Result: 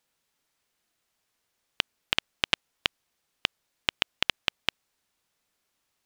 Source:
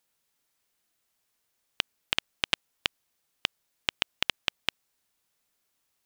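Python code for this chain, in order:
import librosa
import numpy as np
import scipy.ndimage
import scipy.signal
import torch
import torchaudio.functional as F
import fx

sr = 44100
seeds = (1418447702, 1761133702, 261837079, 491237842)

y = fx.high_shelf(x, sr, hz=8800.0, db=-8.5)
y = y * 10.0 ** (2.5 / 20.0)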